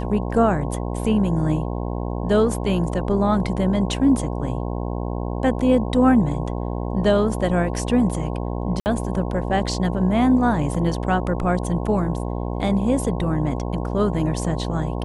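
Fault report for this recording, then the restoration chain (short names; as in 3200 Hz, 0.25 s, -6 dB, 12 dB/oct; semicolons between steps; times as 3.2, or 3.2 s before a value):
buzz 60 Hz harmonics 18 -26 dBFS
8.8–8.86 gap 59 ms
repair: de-hum 60 Hz, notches 18; interpolate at 8.8, 59 ms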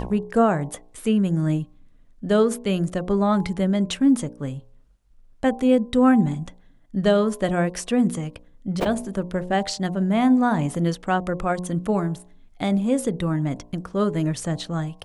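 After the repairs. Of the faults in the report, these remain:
none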